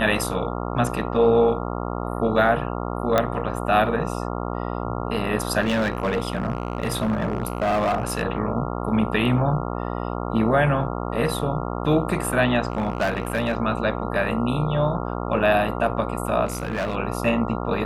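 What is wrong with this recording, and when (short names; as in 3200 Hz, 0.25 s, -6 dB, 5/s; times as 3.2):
buzz 60 Hz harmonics 23 -28 dBFS
3.18 pop -6 dBFS
5.61–8.23 clipped -18 dBFS
12.7–13.57 clipped -18 dBFS
16.45–16.96 clipped -21.5 dBFS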